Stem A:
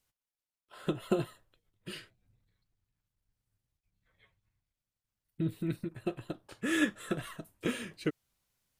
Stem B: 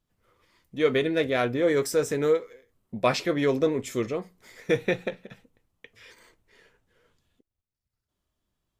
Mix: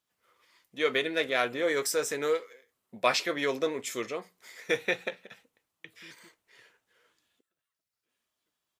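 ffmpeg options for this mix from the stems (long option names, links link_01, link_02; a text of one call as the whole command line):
ffmpeg -i stem1.wav -i stem2.wav -filter_complex "[0:a]alimiter=level_in=1dB:limit=-24dB:level=0:latency=1,volume=-1dB,adelay=400,volume=-10.5dB[link_01];[1:a]volume=2.5dB,asplit=2[link_02][link_03];[link_03]apad=whole_len=405670[link_04];[link_01][link_04]sidechaingate=range=-33dB:threshold=-54dB:ratio=16:detection=peak[link_05];[link_05][link_02]amix=inputs=2:normalize=0,highpass=frequency=1100:poles=1" out.wav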